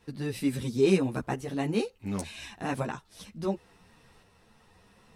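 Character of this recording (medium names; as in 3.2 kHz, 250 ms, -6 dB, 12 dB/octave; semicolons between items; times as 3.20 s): tremolo saw up 0.71 Hz, depth 40%; a shimmering, thickened sound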